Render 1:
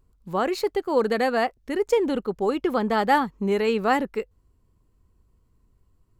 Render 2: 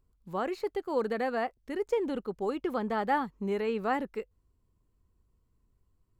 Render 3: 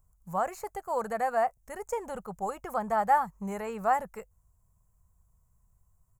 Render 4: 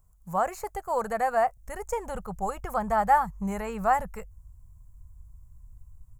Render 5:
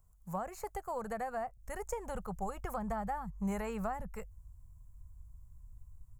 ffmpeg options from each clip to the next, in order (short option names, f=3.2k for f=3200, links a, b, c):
-filter_complex "[0:a]acrossover=split=2600[a][b];[b]acompressor=threshold=-42dB:ratio=4:attack=1:release=60[c];[a][c]amix=inputs=2:normalize=0,volume=-8dB"
-af "firequalizer=gain_entry='entry(170,0);entry(280,-21);entry(660,3);entry(3600,-17);entry(6700,8)':delay=0.05:min_phase=1,volume=4dB"
-af "asubboost=boost=7:cutoff=120,volume=3.5dB"
-filter_complex "[0:a]acrossover=split=310[a][b];[b]acompressor=threshold=-32dB:ratio=10[c];[a][c]amix=inputs=2:normalize=0,volume=-4dB"